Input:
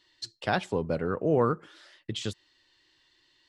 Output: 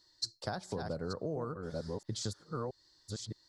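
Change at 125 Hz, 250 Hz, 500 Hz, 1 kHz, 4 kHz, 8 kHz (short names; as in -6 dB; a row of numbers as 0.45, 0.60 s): -5.5, -9.0, -10.0, -10.5, -3.0, +2.5 dB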